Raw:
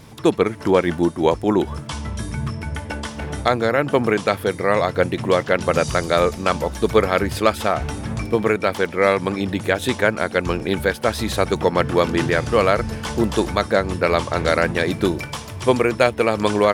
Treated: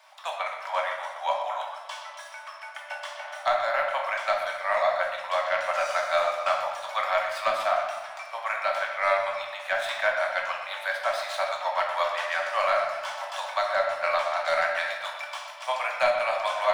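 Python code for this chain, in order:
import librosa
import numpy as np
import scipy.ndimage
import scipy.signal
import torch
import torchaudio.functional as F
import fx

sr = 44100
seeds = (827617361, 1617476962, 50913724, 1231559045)

y = scipy.ndimage.median_filter(x, 3, mode='constant')
y = scipy.signal.sosfilt(scipy.signal.butter(16, 600.0, 'highpass', fs=sr, output='sos'), y)
y = fx.high_shelf(y, sr, hz=4900.0, db=-9.0)
y = 10.0 ** (-7.0 / 20.0) * np.tanh(y / 10.0 ** (-7.0 / 20.0))
y = fx.echo_bbd(y, sr, ms=123, stages=4096, feedback_pct=56, wet_db=-11)
y = fx.room_shoebox(y, sr, seeds[0], volume_m3=240.0, walls='mixed', distance_m=1.1)
y = y * 10.0 ** (-5.5 / 20.0)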